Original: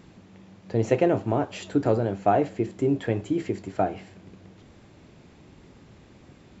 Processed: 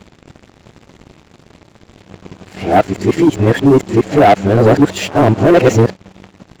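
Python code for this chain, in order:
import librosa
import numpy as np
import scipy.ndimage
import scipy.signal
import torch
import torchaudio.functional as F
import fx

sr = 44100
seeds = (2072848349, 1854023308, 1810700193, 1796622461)

y = x[::-1].copy()
y = fx.leveller(y, sr, passes=3)
y = y * librosa.db_to_amplitude(6.5)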